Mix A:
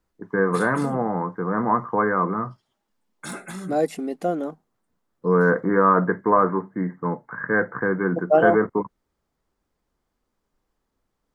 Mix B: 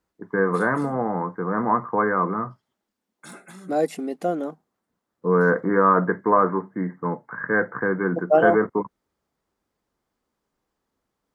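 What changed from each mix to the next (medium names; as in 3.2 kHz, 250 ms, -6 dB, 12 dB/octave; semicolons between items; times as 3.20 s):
background -8.0 dB; master: add high-pass 110 Hz 6 dB/octave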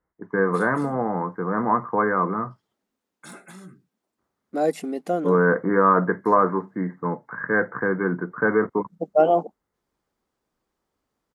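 second voice: entry +0.85 s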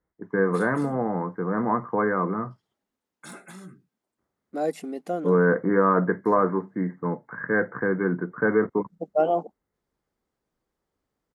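first voice: add peaking EQ 1.1 kHz -5 dB 1.3 oct; second voice -4.5 dB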